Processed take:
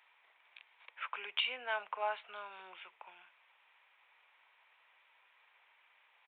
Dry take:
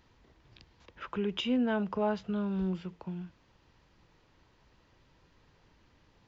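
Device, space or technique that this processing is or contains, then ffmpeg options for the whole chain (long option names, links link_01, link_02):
musical greeting card: -af "aresample=8000,aresample=44100,highpass=frequency=750:width=0.5412,highpass=frequency=750:width=1.3066,equalizer=frequency=2300:width_type=o:width=0.38:gain=10"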